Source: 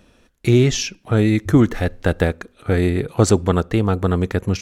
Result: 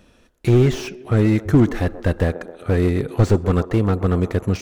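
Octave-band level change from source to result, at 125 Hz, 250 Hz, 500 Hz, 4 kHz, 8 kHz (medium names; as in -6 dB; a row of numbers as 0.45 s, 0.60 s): +0.5 dB, -1.0 dB, -1.0 dB, -7.5 dB, under -10 dB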